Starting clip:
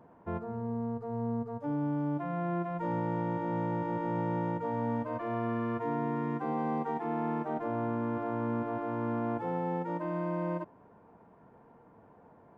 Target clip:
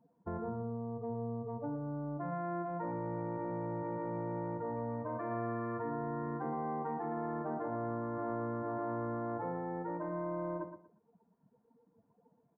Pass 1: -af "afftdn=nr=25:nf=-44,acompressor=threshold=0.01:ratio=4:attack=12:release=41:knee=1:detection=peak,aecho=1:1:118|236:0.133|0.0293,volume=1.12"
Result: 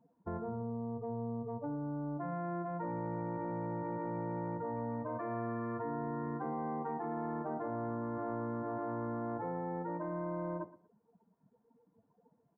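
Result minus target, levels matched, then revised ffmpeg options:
echo-to-direct -8.5 dB
-af "afftdn=nr=25:nf=-44,acompressor=threshold=0.01:ratio=4:attack=12:release=41:knee=1:detection=peak,aecho=1:1:118|236|354:0.355|0.0781|0.0172,volume=1.12"

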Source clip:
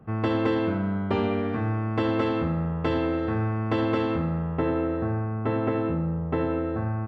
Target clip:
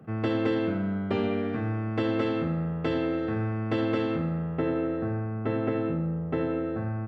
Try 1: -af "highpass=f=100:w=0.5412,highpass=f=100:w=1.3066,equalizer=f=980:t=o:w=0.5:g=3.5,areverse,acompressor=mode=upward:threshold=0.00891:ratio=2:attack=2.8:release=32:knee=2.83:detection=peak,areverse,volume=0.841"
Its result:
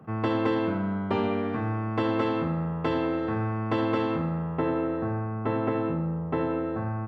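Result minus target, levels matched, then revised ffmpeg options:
1 kHz band +5.0 dB
-af "highpass=f=100:w=0.5412,highpass=f=100:w=1.3066,equalizer=f=980:t=o:w=0.5:g=-8,areverse,acompressor=mode=upward:threshold=0.00891:ratio=2:attack=2.8:release=32:knee=2.83:detection=peak,areverse,volume=0.841"

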